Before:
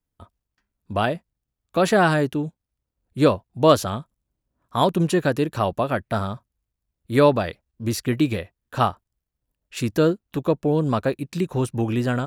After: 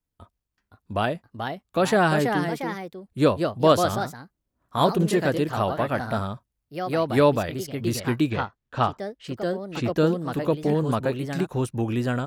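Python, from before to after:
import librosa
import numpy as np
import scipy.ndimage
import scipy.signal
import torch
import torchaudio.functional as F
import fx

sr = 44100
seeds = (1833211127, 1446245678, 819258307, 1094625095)

y = fx.lowpass(x, sr, hz=4500.0, slope=12, at=(8.29, 9.96), fade=0.02)
y = fx.echo_pitch(y, sr, ms=540, semitones=2, count=2, db_per_echo=-6.0)
y = y * 10.0 ** (-2.5 / 20.0)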